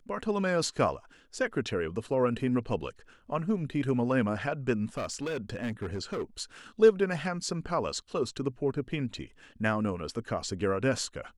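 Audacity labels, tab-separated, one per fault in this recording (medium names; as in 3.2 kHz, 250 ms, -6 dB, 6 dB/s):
4.970000	6.230000	clipped -29 dBFS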